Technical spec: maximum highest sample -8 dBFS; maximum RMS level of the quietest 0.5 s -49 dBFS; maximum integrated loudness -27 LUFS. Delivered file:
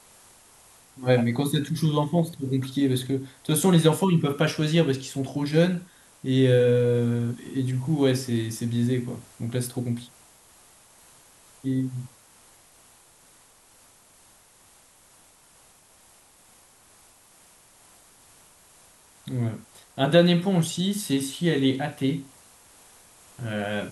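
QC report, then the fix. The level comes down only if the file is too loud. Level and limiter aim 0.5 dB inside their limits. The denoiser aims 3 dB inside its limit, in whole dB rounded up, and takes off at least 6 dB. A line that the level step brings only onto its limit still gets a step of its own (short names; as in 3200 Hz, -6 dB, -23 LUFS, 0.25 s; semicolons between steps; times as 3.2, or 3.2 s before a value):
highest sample -5.0 dBFS: fail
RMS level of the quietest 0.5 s -56 dBFS: OK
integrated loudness -24.5 LUFS: fail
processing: gain -3 dB; limiter -8.5 dBFS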